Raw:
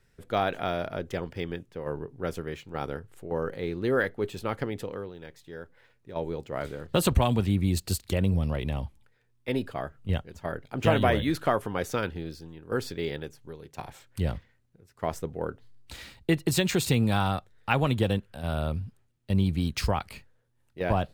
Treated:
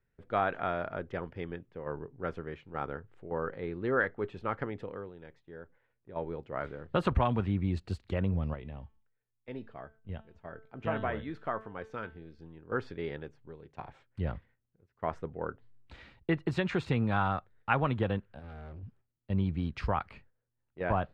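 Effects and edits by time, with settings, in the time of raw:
0:05.39–0:06.18: high-shelf EQ 5,200 Hz −9 dB
0:08.54–0:12.39: tuned comb filter 220 Hz, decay 0.46 s
0:18.39–0:18.83: tube saturation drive 37 dB, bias 0.6
whole clip: low-pass filter 2,300 Hz 12 dB per octave; noise gate −54 dBFS, range −7 dB; dynamic equaliser 1,300 Hz, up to +7 dB, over −43 dBFS, Q 1.1; level −5.5 dB

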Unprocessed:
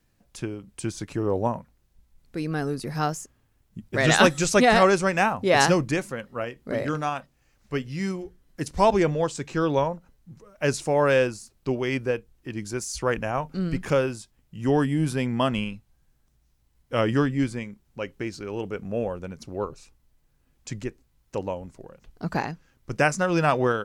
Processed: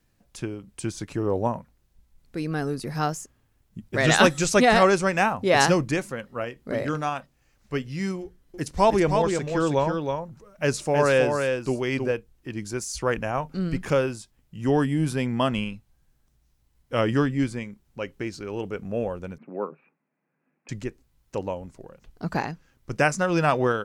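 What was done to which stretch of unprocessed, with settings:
0:08.22–0:12.12: single-tap delay 318 ms −5 dB
0:19.38–0:20.69: Chebyshev band-pass filter 160–2,500 Hz, order 5

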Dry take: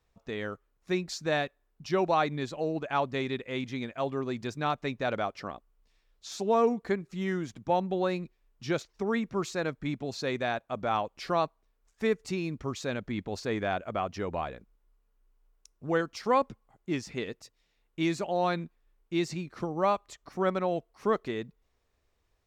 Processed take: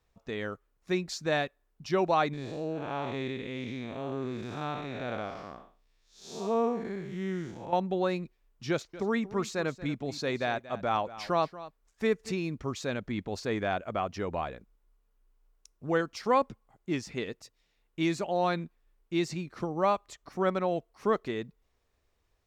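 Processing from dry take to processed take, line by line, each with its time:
0:02.33–0:07.73: spectrum smeared in time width 214 ms
0:08.70–0:12.32: single-tap delay 233 ms −16 dB

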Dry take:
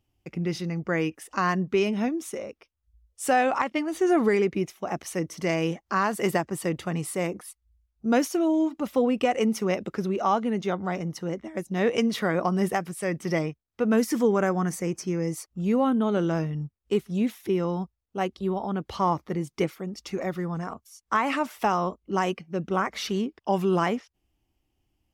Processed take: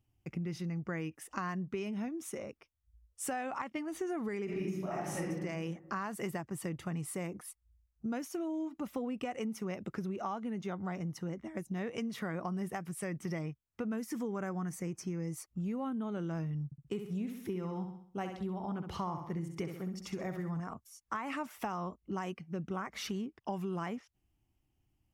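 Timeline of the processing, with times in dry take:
0:04.44–0:05.25: thrown reverb, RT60 1.1 s, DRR −9 dB
0:16.65–0:20.60: flutter between parallel walls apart 11.2 metres, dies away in 0.5 s
whole clip: octave-band graphic EQ 125/500/4,000 Hz +6/−4/−5 dB; downward compressor 5 to 1, threshold −31 dBFS; level −4 dB

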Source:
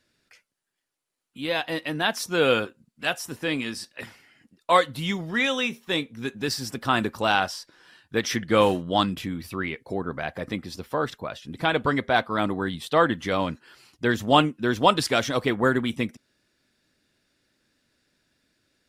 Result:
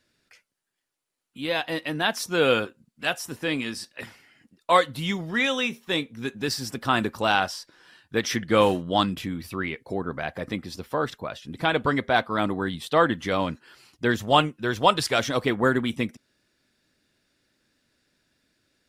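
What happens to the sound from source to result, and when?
0:14.16–0:15.19: parametric band 260 Hz −7 dB 0.74 octaves

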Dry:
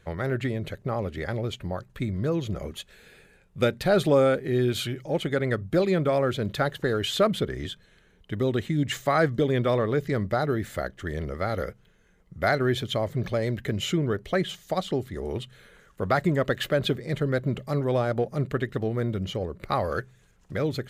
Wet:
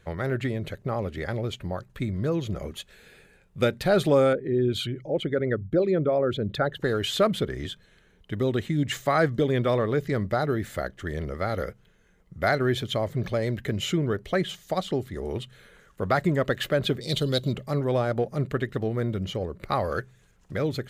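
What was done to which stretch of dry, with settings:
0:04.33–0:06.82: spectral envelope exaggerated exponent 1.5
0:17.01–0:17.53: high shelf with overshoot 2,600 Hz +11.5 dB, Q 3

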